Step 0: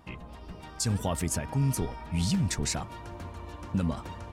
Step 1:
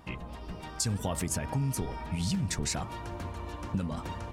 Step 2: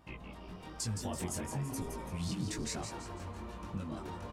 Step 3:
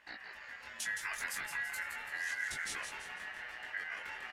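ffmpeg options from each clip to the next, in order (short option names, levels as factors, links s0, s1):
-af "acompressor=threshold=0.0316:ratio=6,bandreject=f=82.34:t=h:w=4,bandreject=f=164.68:t=h:w=4,bandreject=f=247.02:t=h:w=4,bandreject=f=329.36:t=h:w=4,bandreject=f=411.7:t=h:w=4,bandreject=f=494.04:t=h:w=4,bandreject=f=576.38:t=h:w=4,bandreject=f=658.72:t=h:w=4,bandreject=f=741.06:t=h:w=4,bandreject=f=823.4:t=h:w=4,bandreject=f=905.74:t=h:w=4,bandreject=f=988.08:t=h:w=4,bandreject=f=1070.42:t=h:w=4,bandreject=f=1152.76:t=h:w=4,bandreject=f=1235.1:t=h:w=4,bandreject=f=1317.44:t=h:w=4,bandreject=f=1399.78:t=h:w=4,volume=1.41"
-filter_complex "[0:a]flanger=delay=18:depth=4.8:speed=1.1,asplit=2[s0][s1];[s1]asplit=5[s2][s3][s4][s5][s6];[s2]adelay=167,afreqshift=130,volume=0.473[s7];[s3]adelay=334,afreqshift=260,volume=0.209[s8];[s4]adelay=501,afreqshift=390,volume=0.0912[s9];[s5]adelay=668,afreqshift=520,volume=0.0403[s10];[s6]adelay=835,afreqshift=650,volume=0.0178[s11];[s7][s8][s9][s10][s11]amix=inputs=5:normalize=0[s12];[s0][s12]amix=inputs=2:normalize=0,volume=0.596"
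-af "aeval=exprs='val(0)*sin(2*PI*1800*n/s)':c=same,volume=1.12"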